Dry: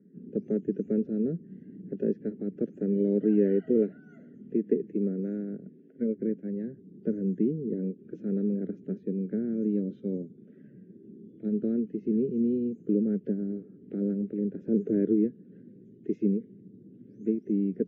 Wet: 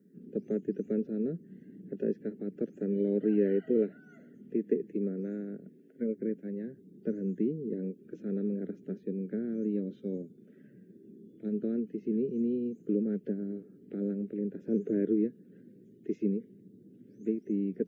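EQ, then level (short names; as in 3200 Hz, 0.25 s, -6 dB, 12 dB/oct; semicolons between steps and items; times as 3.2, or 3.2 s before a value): tilt +2 dB/oct; 0.0 dB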